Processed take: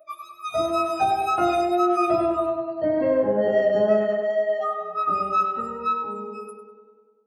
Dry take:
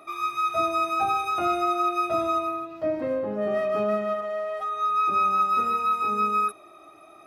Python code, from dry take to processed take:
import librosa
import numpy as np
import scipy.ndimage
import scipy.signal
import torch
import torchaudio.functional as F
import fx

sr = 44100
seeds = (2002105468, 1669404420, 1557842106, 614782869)

y = fx.fade_out_tail(x, sr, length_s=2.37)
y = fx.wow_flutter(y, sr, seeds[0], rate_hz=2.1, depth_cents=24.0)
y = fx.doubler(y, sr, ms=17.0, db=-12.0)
y = fx.noise_reduce_blind(y, sr, reduce_db=26)
y = fx.echo_tape(y, sr, ms=99, feedback_pct=73, wet_db=-4.0, lp_hz=2000.0, drive_db=17.0, wow_cents=7)
y = F.gain(torch.from_numpy(y), 4.5).numpy()